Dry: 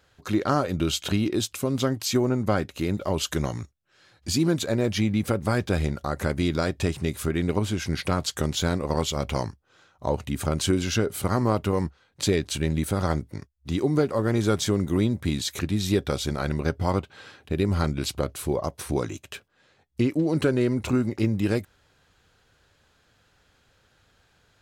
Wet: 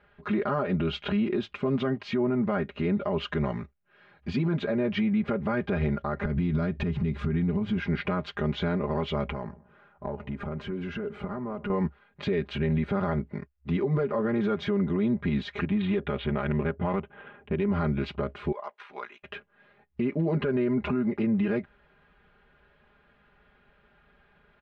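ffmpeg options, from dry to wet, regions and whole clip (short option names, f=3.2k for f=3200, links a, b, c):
-filter_complex "[0:a]asettb=1/sr,asplit=3[a][b][c];[a]atrim=end=6.254[d];[b]atrim=start=6.25:end=7.78,asetpts=PTS-STARTPTS,afade=t=in:d=0.004:c=qsin,afade=t=out:st=1.526:d=0.004:c=qsin,bass=f=250:g=12,treble=f=4k:g=7,acompressor=threshold=-21dB:ratio=12:attack=3.2:release=140:knee=1:detection=peak[e];[c]atrim=start=7.776[f];[d][e]acrossfade=d=0.004:c1=hsin:c2=qsin[g];[g][f]acrossfade=d=0.004:c1=qsin:c2=hsin,asettb=1/sr,asplit=3[h][i][j];[h]atrim=end=9.304[k];[i]atrim=start=9.3:end=11.7,asetpts=PTS-STARTPTS,afade=t=in:d=0.004:c=qsin,afade=t=out:st=2.396:d=0.004:c=qsin,equalizer=f=3.8k:t=o:w=1.4:g=-7.5,acompressor=threshold=-30dB:ratio=12:attack=3.2:release=140:knee=1:detection=peak,asplit=2[l][m];[m]adelay=124,lowpass=f=1.1k:p=1,volume=-18dB,asplit=2[n][o];[o]adelay=124,lowpass=f=1.1k:p=1,volume=0.39,asplit=2[p][q];[q]adelay=124,lowpass=f=1.1k:p=1,volume=0.39[r];[l][n][p][r]amix=inputs=4:normalize=0,atrim=end_sample=105840[s];[j]atrim=start=11.696[t];[k][s]acrossfade=d=0.004:c1=hsin:c2=qsin[u];[u][t]acrossfade=d=0.004:c1=qsin:c2=hsin,asettb=1/sr,asplit=3[v][w][x];[v]atrim=end=15.634[y];[w]atrim=start=15.63:end=17.68,asetpts=PTS-STARTPTS,afade=t=in:d=0.004:c=qsin,afade=t=out:st=2.046:d=0.004:c=qsin,highshelf=f=4.5k:t=q:w=3:g=-11,adynamicsmooth=sensitivity=3.5:basefreq=1.2k[z];[x]atrim=start=17.676[aa];[y][z]acrossfade=d=0.004:c1=hsin:c2=qsin[ab];[ab][aa]acrossfade=d=0.004:c1=qsin:c2=hsin,asettb=1/sr,asplit=3[ac][ad][ae];[ac]atrim=end=18.524[af];[ad]atrim=start=18.52:end=19.23,asetpts=PTS-STARTPTS,afade=t=in:d=0.004:c=qsin,afade=t=out:st=0.706:d=0.004:c=qsin,highpass=1.1k,aeval=exprs='val(0)*sin(2*PI*31*n/s)':c=same[ag];[ae]atrim=start=19.226[ah];[af][ag]acrossfade=d=0.004:c1=hsin:c2=qsin[ai];[ai][ah]acrossfade=d=0.004:c1=qsin:c2=hsin,lowpass=f=2.6k:w=0.5412,lowpass=f=2.6k:w=1.3066,aecho=1:1:4.9:0.94,alimiter=limit=-19dB:level=0:latency=1:release=78"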